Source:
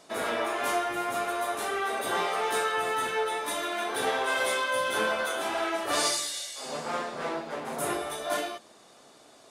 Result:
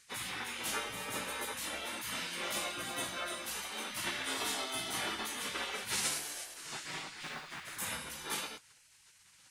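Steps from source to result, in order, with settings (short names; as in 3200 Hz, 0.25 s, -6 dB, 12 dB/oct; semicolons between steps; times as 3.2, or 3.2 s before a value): spectral gate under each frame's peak -15 dB weak; 7.22–7.82 modulation noise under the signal 23 dB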